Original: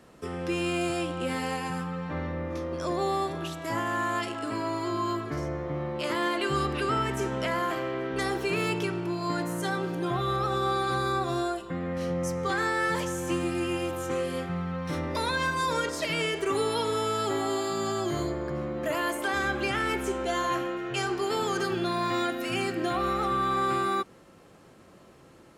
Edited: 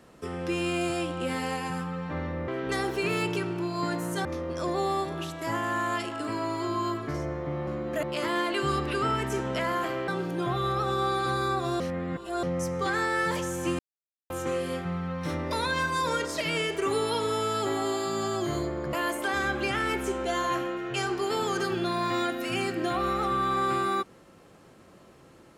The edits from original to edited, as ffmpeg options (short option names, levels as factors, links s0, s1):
-filter_complex "[0:a]asplit=11[s0][s1][s2][s3][s4][s5][s6][s7][s8][s9][s10];[s0]atrim=end=2.482[s11];[s1]atrim=start=7.948:end=9.722[s12];[s2]atrim=start=2.478:end=5.902[s13];[s3]atrim=start=18.568:end=18.932[s14];[s4]atrim=start=5.898:end=7.952[s15];[s5]atrim=start=9.718:end=11.442[s16];[s6]atrim=start=11.438:end=12.072,asetpts=PTS-STARTPTS,areverse[s17];[s7]atrim=start=12.068:end=13.43,asetpts=PTS-STARTPTS,afade=t=out:st=1.358:d=0.004:c=hsin[s18];[s8]atrim=start=13.43:end=13.94,asetpts=PTS-STARTPTS,volume=0[s19];[s9]atrim=start=13.94:end=18.572,asetpts=PTS-STARTPTS,afade=t=in:d=0.004:c=hsin[s20];[s10]atrim=start=18.928[s21];[s11][s12]acrossfade=d=0.004:c1=hsin:c2=hsin[s22];[s22][s13]acrossfade=d=0.004:c1=hsin:c2=hsin[s23];[s23][s14]acrossfade=d=0.004:c1=hsin:c2=hsin[s24];[s24][s15]acrossfade=d=0.004:c1=hsin:c2=hsin[s25];[s25][s16]acrossfade=d=0.004:c1=hsin:c2=hsin[s26];[s26][s17]acrossfade=d=0.004:c1=hsin:c2=hsin[s27];[s18][s19][s20]concat=n=3:v=0:a=1[s28];[s27][s28]acrossfade=d=0.004:c1=hsin:c2=hsin[s29];[s29][s21]acrossfade=d=0.004:c1=hsin:c2=hsin"